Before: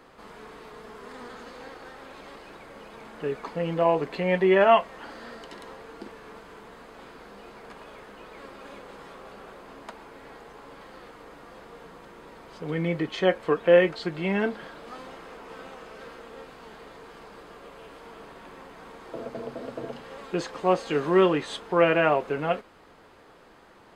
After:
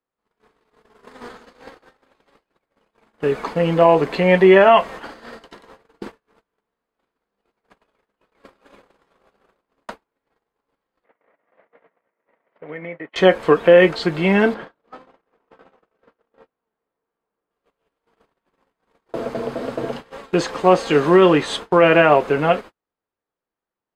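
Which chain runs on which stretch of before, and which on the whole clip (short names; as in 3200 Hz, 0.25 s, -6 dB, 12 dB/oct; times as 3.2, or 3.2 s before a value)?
11.04–13.16 speaker cabinet 240–2600 Hz, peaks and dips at 340 Hz -3 dB, 610 Hz +9 dB, 2000 Hz +9 dB + compressor 5:1, threshold -38 dBFS
14.54–17.51 LPF 1600 Hz 6 dB/oct + low shelf 98 Hz -7.5 dB
whole clip: gate -40 dBFS, range -45 dB; maximiser +11 dB; gain -1 dB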